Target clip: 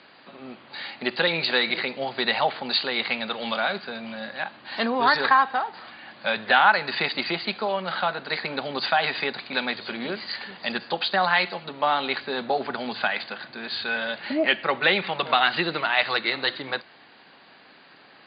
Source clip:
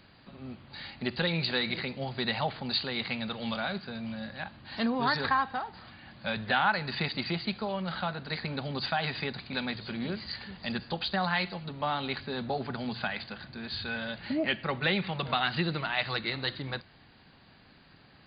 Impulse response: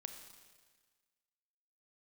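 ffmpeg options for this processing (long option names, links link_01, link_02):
-af "highpass=370,lowpass=4300,volume=9dB"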